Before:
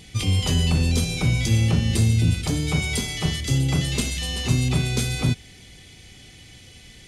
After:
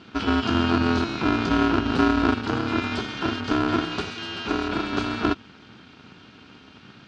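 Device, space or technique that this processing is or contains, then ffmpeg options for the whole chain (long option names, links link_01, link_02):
ring modulator pedal into a guitar cabinet: -filter_complex "[0:a]asettb=1/sr,asplit=3[link_01][link_02][link_03];[link_01]atrim=end=3.844[link_04];[link_02]atrim=start=3.84:end=4.93,asetpts=PTS-STARTPTS,afade=type=in:duration=0.004:curve=qsin,afade=type=out:start_time=1.086:duration=0.004:curve=qsin,highpass=140[link_05];[link_03]atrim=start=4.926[link_06];[link_04][link_05]acrossfade=duration=0.004:curve1=hsin:curve2=qsin[link_07];[link_07][link_06]acrossfade=duration=0.004:curve1=qsin:curve2=hsin,aeval=exprs='val(0)*sgn(sin(2*PI*170*n/s))':channel_layout=same,highpass=110,equalizer=frequency=180:width_type=q:width=4:gain=7,equalizer=frequency=570:width_type=q:width=4:gain=-9,equalizer=frequency=1400:width_type=q:width=4:gain=10,equalizer=frequency=2000:width_type=q:width=4:gain=-9,equalizer=frequency=3500:width_type=q:width=4:gain=-5,lowpass=frequency=4100:width=0.5412,lowpass=frequency=4100:width=1.3066"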